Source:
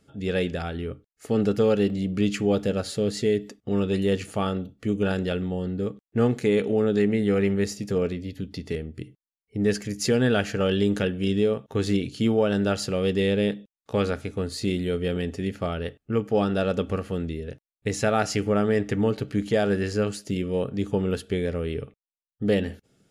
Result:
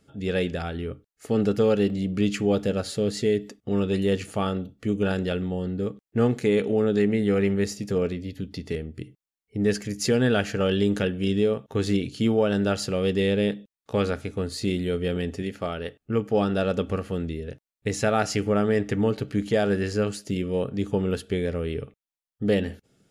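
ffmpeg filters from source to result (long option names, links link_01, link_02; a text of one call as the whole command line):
ffmpeg -i in.wav -filter_complex "[0:a]asettb=1/sr,asplit=3[link_01][link_02][link_03];[link_01]atrim=end=15.424[link_04];[link_02]atrim=start=15.42:end=16.01,asetpts=PTS-STARTPTS,afade=type=in:duration=0.004:curve=qsin,afade=type=out:start_time=0.586:duration=0.004:curve=qsin,lowshelf=frequency=170:gain=-8[link_05];[link_03]atrim=start=16.006[link_06];[link_04][link_05]acrossfade=duration=0.004:curve1=hsin:curve2=qsin[link_07];[link_07][link_06]acrossfade=duration=0.004:curve1=qsin:curve2=hsin" out.wav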